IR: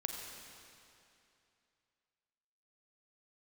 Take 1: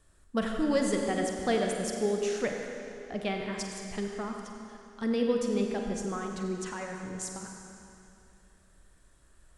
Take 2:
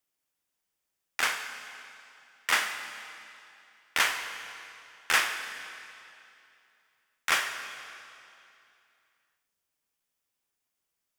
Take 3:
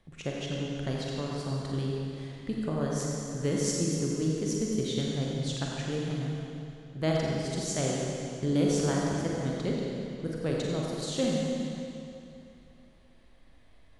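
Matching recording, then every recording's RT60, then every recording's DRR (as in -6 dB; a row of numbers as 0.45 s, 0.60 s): 1; 2.7 s, 2.7 s, 2.7 s; 1.5 dB, 7.5 dB, -3.5 dB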